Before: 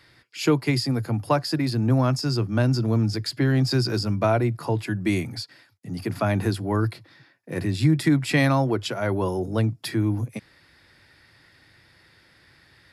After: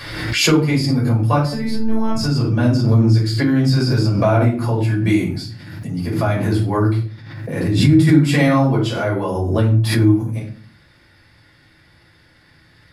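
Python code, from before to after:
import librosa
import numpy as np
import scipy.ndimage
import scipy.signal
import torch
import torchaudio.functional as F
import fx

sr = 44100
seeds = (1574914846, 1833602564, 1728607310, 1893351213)

y = fx.robotise(x, sr, hz=222.0, at=(1.41, 2.15))
y = fx.room_shoebox(y, sr, seeds[0], volume_m3=390.0, walls='furnished', distance_m=5.6)
y = fx.pre_swell(y, sr, db_per_s=44.0)
y = F.gain(torch.from_numpy(y), -5.5).numpy()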